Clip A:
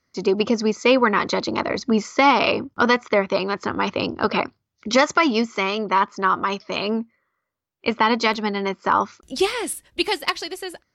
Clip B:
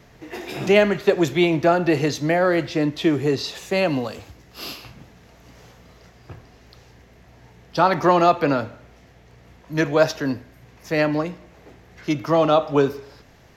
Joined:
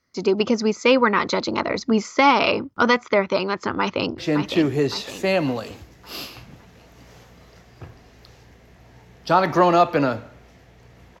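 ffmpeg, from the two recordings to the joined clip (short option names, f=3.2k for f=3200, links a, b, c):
-filter_complex "[0:a]apad=whole_dur=11.2,atrim=end=11.2,atrim=end=4.182[a];[1:a]atrim=start=2.658:end=9.68[b];[a][b]acrossfade=d=0.004:c1=hsin:c2=hsin,asplit=2[c][d];[d]afade=t=in:st=3.79:d=0.01,afade=t=out:st=4.18:d=0.01,aecho=0:1:560|1120|1680|2240|2800:0.446684|0.201008|0.0904534|0.040704|0.0183168[e];[c][e]amix=inputs=2:normalize=0"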